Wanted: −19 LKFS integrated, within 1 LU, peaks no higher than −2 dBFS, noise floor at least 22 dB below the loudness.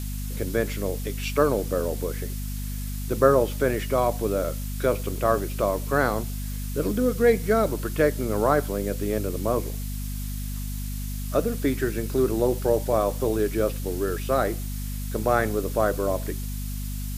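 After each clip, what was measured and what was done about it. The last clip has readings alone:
mains hum 50 Hz; hum harmonics up to 250 Hz; level of the hum −29 dBFS; background noise floor −31 dBFS; target noise floor −48 dBFS; integrated loudness −25.5 LKFS; sample peak −4.0 dBFS; target loudness −19.0 LKFS
→ mains-hum notches 50/100/150/200/250 Hz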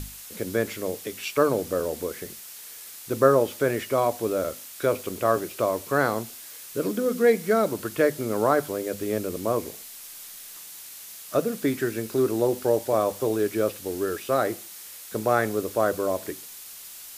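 mains hum none found; background noise floor −42 dBFS; target noise floor −48 dBFS
→ noise reduction from a noise print 6 dB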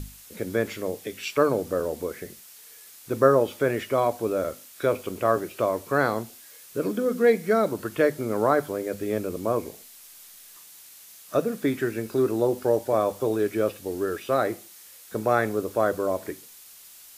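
background noise floor −48 dBFS; integrated loudness −25.5 LKFS; sample peak −4.5 dBFS; target loudness −19.0 LKFS
→ level +6.5 dB
brickwall limiter −2 dBFS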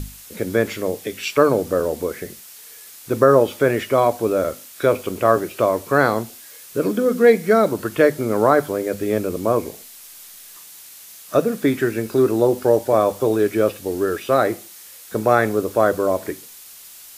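integrated loudness −19.5 LKFS; sample peak −2.0 dBFS; background noise floor −42 dBFS

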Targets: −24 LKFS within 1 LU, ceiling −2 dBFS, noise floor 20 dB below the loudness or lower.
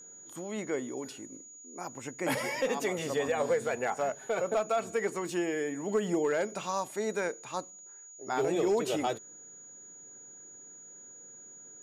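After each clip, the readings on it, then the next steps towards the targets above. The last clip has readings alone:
share of clipped samples 0.4%; peaks flattened at −21.5 dBFS; interfering tone 6,800 Hz; level of the tone −48 dBFS; integrated loudness −32.0 LKFS; sample peak −21.5 dBFS; target loudness −24.0 LKFS
→ clipped peaks rebuilt −21.5 dBFS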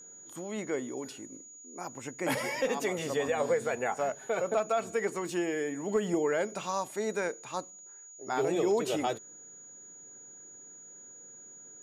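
share of clipped samples 0.0%; interfering tone 6,800 Hz; level of the tone −48 dBFS
→ notch filter 6,800 Hz, Q 30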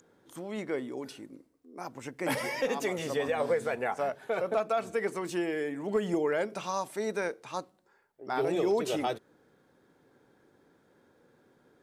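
interfering tone none found; integrated loudness −32.0 LKFS; sample peak −16.0 dBFS; target loudness −24.0 LKFS
→ level +8 dB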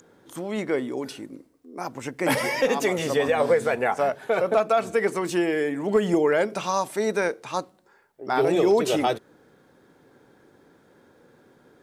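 integrated loudness −24.0 LKFS; sample peak −8.0 dBFS; background noise floor −59 dBFS

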